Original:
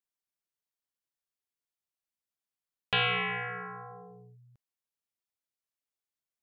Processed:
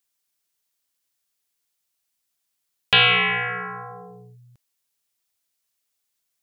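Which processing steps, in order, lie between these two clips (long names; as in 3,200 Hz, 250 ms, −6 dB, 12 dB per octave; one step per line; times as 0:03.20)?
high-shelf EQ 2,400 Hz +9.5 dB
level +7.5 dB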